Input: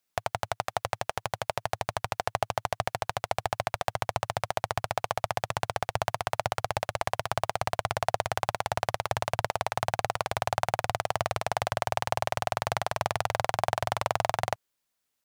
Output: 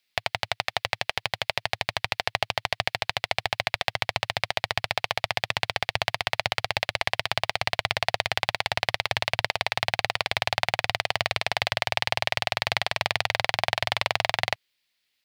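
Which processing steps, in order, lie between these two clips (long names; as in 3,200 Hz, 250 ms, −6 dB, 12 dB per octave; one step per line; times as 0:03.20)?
flat-topped bell 3,000 Hz +13 dB
level −1 dB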